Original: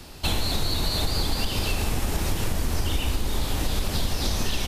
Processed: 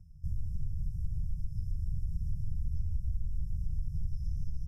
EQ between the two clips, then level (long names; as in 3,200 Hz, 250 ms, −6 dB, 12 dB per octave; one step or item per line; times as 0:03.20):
linear-phase brick-wall band-stop 180–5,100 Hz
high-frequency loss of the air 490 metres
−6.5 dB